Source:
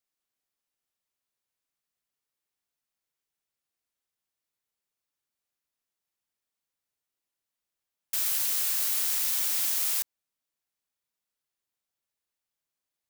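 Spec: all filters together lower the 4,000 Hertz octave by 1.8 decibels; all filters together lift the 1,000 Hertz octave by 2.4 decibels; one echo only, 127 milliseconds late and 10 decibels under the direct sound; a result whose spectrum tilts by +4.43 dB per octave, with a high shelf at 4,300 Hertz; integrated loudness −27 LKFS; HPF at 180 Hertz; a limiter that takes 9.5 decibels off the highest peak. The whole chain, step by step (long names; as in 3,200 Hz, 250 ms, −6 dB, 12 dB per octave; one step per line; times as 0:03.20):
high-pass filter 180 Hz
parametric band 1,000 Hz +3 dB
parametric band 4,000 Hz −8 dB
high-shelf EQ 4,300 Hz +8 dB
brickwall limiter −16.5 dBFS
single-tap delay 127 ms −10 dB
level −4 dB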